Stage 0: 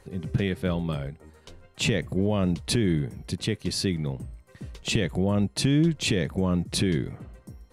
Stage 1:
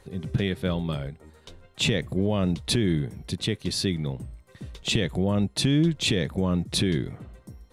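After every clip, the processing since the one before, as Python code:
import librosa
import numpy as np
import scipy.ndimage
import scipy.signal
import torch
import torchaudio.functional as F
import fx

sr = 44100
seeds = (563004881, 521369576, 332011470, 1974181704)

y = fx.peak_eq(x, sr, hz=3600.0, db=6.5, octaves=0.24)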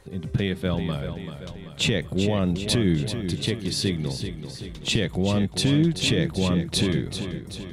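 y = fx.echo_feedback(x, sr, ms=386, feedback_pct=55, wet_db=-9.0)
y = F.gain(torch.from_numpy(y), 1.0).numpy()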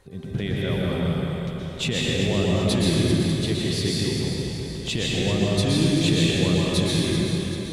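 y = fx.rev_plate(x, sr, seeds[0], rt60_s=2.6, hf_ratio=0.85, predelay_ms=105, drr_db=-5.0)
y = F.gain(torch.from_numpy(y), -4.0).numpy()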